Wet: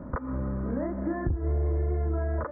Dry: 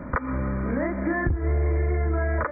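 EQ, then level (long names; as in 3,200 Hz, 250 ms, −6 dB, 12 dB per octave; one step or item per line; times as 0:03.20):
Gaussian smoothing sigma 6.5 samples
−3.5 dB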